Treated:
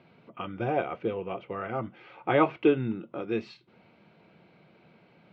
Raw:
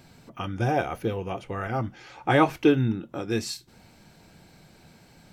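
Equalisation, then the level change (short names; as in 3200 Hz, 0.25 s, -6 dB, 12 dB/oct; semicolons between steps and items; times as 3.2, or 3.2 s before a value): speaker cabinet 200–2800 Hz, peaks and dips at 270 Hz -6 dB, 820 Hz -6 dB, 1700 Hz -9 dB; 0.0 dB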